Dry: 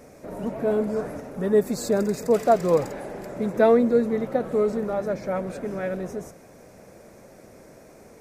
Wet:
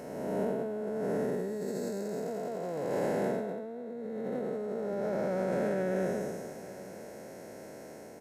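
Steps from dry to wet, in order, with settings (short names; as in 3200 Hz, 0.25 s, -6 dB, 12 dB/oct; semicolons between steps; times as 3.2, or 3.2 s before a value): time blur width 0.459 s; on a send: echo 0.879 s -20.5 dB; on the sum: negative-ratio compressor -33 dBFS, ratio -1; low shelf 78 Hz -7.5 dB; notch comb 1200 Hz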